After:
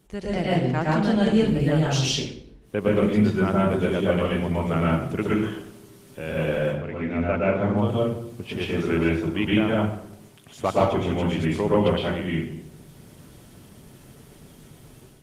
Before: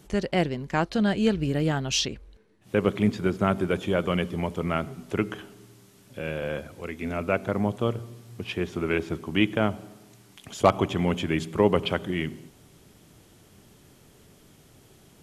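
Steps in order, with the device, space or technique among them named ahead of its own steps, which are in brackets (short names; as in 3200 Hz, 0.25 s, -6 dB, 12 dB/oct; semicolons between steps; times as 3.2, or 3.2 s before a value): 6.58–7.76 LPF 2200 Hz -> 4900 Hz 12 dB/oct; speakerphone in a meeting room (reverb RT60 0.65 s, pre-delay 0.107 s, DRR -5.5 dB; AGC gain up to 7.5 dB; gain -7 dB; Opus 24 kbps 48000 Hz)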